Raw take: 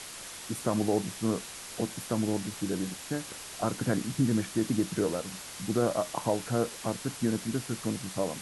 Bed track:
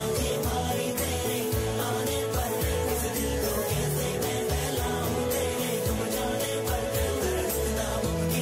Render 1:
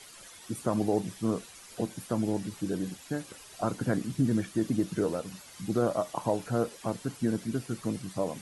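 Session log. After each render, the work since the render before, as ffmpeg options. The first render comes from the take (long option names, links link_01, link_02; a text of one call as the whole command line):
ffmpeg -i in.wav -af "afftdn=noise_reduction=11:noise_floor=-43" out.wav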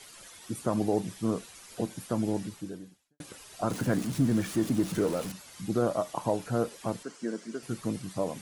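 ffmpeg -i in.wav -filter_complex "[0:a]asettb=1/sr,asplit=3[link_01][link_02][link_03];[link_01]atrim=end=3.704[link_04];[link_02]atrim=start=3.7:end=5.32,asetpts=PTS-STARTPTS,afade=type=in:duration=0.004:curve=qsin,afade=type=out:start_time=1.616:duration=0.004:curve=qsin,aeval=exprs='val(0)+0.5*0.015*sgn(val(0))':channel_layout=same[link_05];[link_03]atrim=start=5.316[link_06];[link_04][link_05]acrossfade=duration=0.004:curve1=hsin:curve2=qsin[link_07];[link_07][link_06]acrossfade=duration=0.004:curve1=qsin:curve2=hsin,asettb=1/sr,asplit=3[link_08][link_09][link_10];[link_08]atrim=end=7.034[link_11];[link_09]atrim=start=7.03:end=7.63,asetpts=PTS-STARTPTS,afade=type=in:duration=0.004:curve=qsin,afade=type=out:start_time=0.596:duration=0.004:curve=qsin,highpass=frequency=250:width=0.5412,highpass=frequency=250:width=1.3066,equalizer=frequency=280:width_type=q:width=4:gain=-7,equalizer=frequency=800:width_type=q:width=4:gain=-7,equalizer=frequency=2500:width_type=q:width=4:gain=-5,equalizer=frequency=3700:width_type=q:width=4:gain=-7,lowpass=frequency=8100:width=0.5412,lowpass=frequency=8100:width=1.3066[link_12];[link_10]atrim=start=7.626[link_13];[link_11][link_12]acrossfade=duration=0.004:curve1=hsin:curve2=qsin[link_14];[link_14][link_13]acrossfade=duration=0.004:curve1=qsin:curve2=hsin,asplit=2[link_15][link_16];[link_15]atrim=end=3.2,asetpts=PTS-STARTPTS,afade=type=out:start_time=2.42:duration=0.78:curve=qua[link_17];[link_16]atrim=start=3.2,asetpts=PTS-STARTPTS,afade=type=in:duration=0.004:curve=hsin[link_18];[link_17][link_18]concat=n=2:v=0:a=1" out.wav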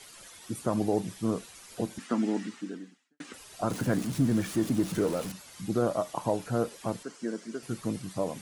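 ffmpeg -i in.wav -filter_complex "[0:a]asettb=1/sr,asplit=3[link_01][link_02][link_03];[link_01]atrim=end=1.984[link_04];[link_02]atrim=start=1.98:end=3.34,asetpts=PTS-STARTPTS,afade=type=in:duration=0.004:curve=qsin,afade=type=out:start_time=1.356:duration=0.004:curve=qsin,highpass=frequency=200:width=0.5412,highpass=frequency=200:width=1.3066,equalizer=frequency=250:width_type=q:width=4:gain=9,equalizer=frequency=570:width_type=q:width=4:gain=-6,equalizer=frequency=1300:width_type=q:width=4:gain=6,equalizer=frequency=1900:width_type=q:width=4:gain=9,equalizer=frequency=2800:width_type=q:width=4:gain=4,lowpass=frequency=8200:width=0.5412,lowpass=frequency=8200:width=1.3066[link_05];[link_03]atrim=start=3.336[link_06];[link_04][link_05]acrossfade=duration=0.004:curve1=hsin:curve2=qsin[link_07];[link_07][link_06]acrossfade=duration=0.004:curve1=qsin:curve2=hsin" out.wav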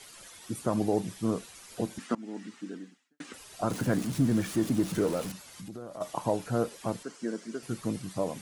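ffmpeg -i in.wav -filter_complex "[0:a]asplit=3[link_01][link_02][link_03];[link_01]afade=type=out:start_time=5.41:duration=0.02[link_04];[link_02]acompressor=threshold=-40dB:ratio=4:attack=3.2:release=140:knee=1:detection=peak,afade=type=in:start_time=5.41:duration=0.02,afade=type=out:start_time=6:duration=0.02[link_05];[link_03]afade=type=in:start_time=6:duration=0.02[link_06];[link_04][link_05][link_06]amix=inputs=3:normalize=0,asplit=2[link_07][link_08];[link_07]atrim=end=2.15,asetpts=PTS-STARTPTS,afade=type=out:start_time=2.146:duration=0.004:curve=hsin:silence=0.0794328[link_09];[link_08]atrim=start=2.15,asetpts=PTS-STARTPTS,afade=type=in:duration=0.68:silence=0.0794328[link_10];[link_09][link_10]concat=n=2:v=0:a=1" out.wav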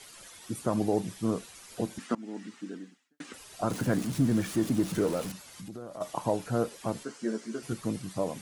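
ffmpeg -i in.wav -filter_complex "[0:a]asettb=1/sr,asplit=3[link_01][link_02][link_03];[link_01]atrim=end=6.954[link_04];[link_02]atrim=start=6.95:end=7.73,asetpts=PTS-STARTPTS,afade=type=in:duration=0.004:curve=qsin,afade=type=out:start_time=0.776:duration=0.004:curve=qsin,asplit=2[link_05][link_06];[link_06]adelay=14,volume=-4dB[link_07];[link_05][link_07]amix=inputs=2:normalize=0,atrim=end_sample=34398[link_08];[link_03]atrim=start=7.726[link_09];[link_04][link_08]acrossfade=duration=0.004:curve1=hsin:curve2=qsin[link_10];[link_10][link_09]acrossfade=duration=0.004:curve1=qsin:curve2=hsin" out.wav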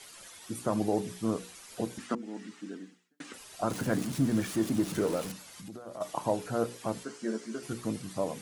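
ffmpeg -i in.wav -af "lowshelf=frequency=150:gain=-4,bandreject=frequency=60:width_type=h:width=6,bandreject=frequency=120:width_type=h:width=6,bandreject=frequency=180:width_type=h:width=6,bandreject=frequency=240:width_type=h:width=6,bandreject=frequency=300:width_type=h:width=6,bandreject=frequency=360:width_type=h:width=6,bandreject=frequency=420:width_type=h:width=6,bandreject=frequency=480:width_type=h:width=6" out.wav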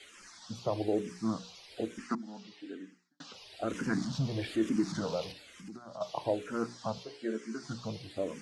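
ffmpeg -i in.wav -filter_complex "[0:a]lowpass=frequency=4900:width_type=q:width=1.6,asplit=2[link_01][link_02];[link_02]afreqshift=-1.1[link_03];[link_01][link_03]amix=inputs=2:normalize=1" out.wav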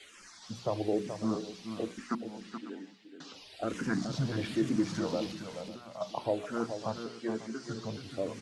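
ffmpeg -i in.wav -af "aecho=1:1:427|547:0.376|0.15" out.wav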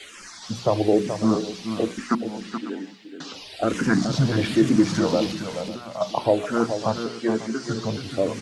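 ffmpeg -i in.wav -af "volume=11.5dB" out.wav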